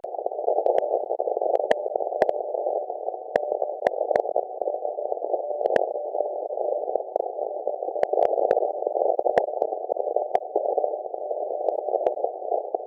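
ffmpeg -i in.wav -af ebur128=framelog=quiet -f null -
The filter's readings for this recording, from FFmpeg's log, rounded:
Integrated loudness:
  I:         -26.1 LUFS
  Threshold: -36.1 LUFS
Loudness range:
  LRA:         2.5 LU
  Threshold: -46.1 LUFS
  LRA low:   -27.3 LUFS
  LRA high:  -24.9 LUFS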